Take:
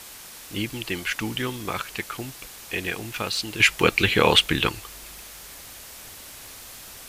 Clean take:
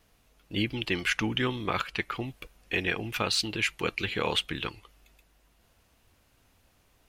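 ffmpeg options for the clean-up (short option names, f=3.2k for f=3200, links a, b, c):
-af "afwtdn=0.0089,asetnsamples=n=441:p=0,asendcmd='3.6 volume volume -11dB',volume=0dB"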